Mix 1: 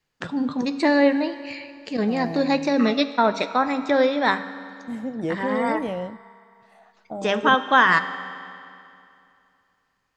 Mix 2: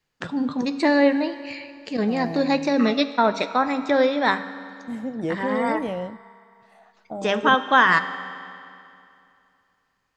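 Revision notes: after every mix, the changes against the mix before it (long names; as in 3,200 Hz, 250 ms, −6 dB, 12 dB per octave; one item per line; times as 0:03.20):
nothing changed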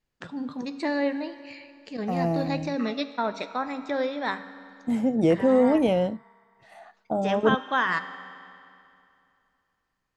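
first voice −8.5 dB
second voice +6.5 dB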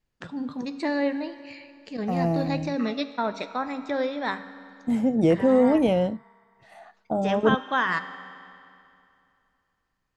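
master: add low-shelf EQ 160 Hz +4.5 dB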